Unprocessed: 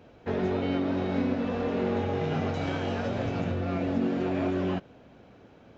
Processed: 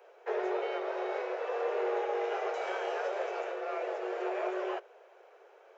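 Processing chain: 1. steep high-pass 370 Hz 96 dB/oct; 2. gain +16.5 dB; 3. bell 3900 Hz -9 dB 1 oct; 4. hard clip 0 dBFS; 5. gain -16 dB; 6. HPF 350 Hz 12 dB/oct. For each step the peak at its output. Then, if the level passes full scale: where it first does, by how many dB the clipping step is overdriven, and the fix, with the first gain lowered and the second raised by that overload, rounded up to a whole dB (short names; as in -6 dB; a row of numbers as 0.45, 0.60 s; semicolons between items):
-19.0, -2.5, -3.0, -3.0, -19.0, -21.0 dBFS; no overload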